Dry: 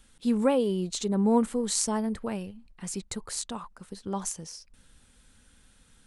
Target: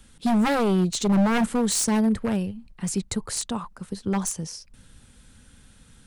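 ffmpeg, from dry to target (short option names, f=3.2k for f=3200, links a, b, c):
-filter_complex "[0:a]equalizer=f=120:w=0.64:g=7,acrossover=split=150[a][b];[b]aeval=exprs='0.075*(abs(mod(val(0)/0.075+3,4)-2)-1)':c=same[c];[a][c]amix=inputs=2:normalize=0,volume=5dB"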